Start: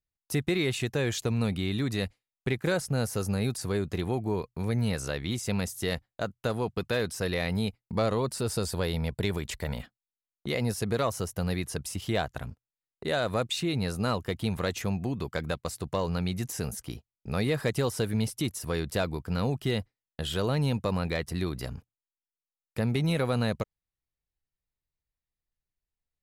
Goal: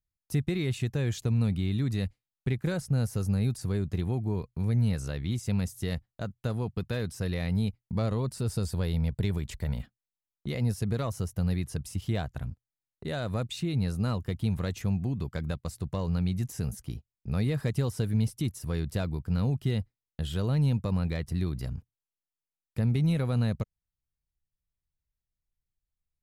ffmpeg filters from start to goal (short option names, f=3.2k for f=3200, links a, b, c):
-af "bass=f=250:g=12,treble=f=4k:g=1,volume=-7.5dB"